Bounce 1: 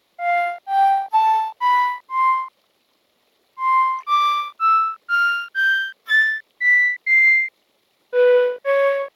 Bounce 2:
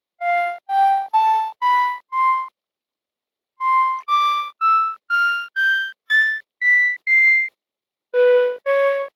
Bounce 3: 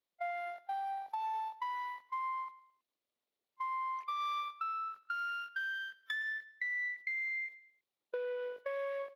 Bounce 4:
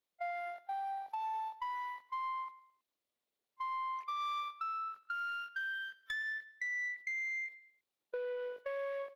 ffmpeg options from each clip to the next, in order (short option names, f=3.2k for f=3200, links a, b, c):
-af "agate=range=-24dB:threshold=-30dB:ratio=16:detection=peak"
-af "alimiter=limit=-16.5dB:level=0:latency=1:release=271,acompressor=threshold=-32dB:ratio=5,aecho=1:1:108|216|324:0.112|0.0471|0.0198,volume=-5.5dB"
-af "asoftclip=type=tanh:threshold=-30.5dB"